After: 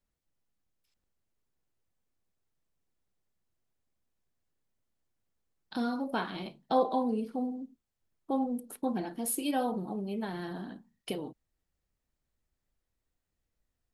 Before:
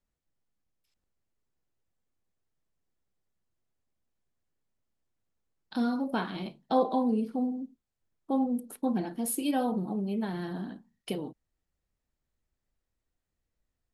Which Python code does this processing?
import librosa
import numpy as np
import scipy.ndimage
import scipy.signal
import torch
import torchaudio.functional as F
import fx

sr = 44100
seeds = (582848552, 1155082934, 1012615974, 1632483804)

y = fx.dynamic_eq(x, sr, hz=190.0, q=0.93, threshold_db=-40.0, ratio=4.0, max_db=-5)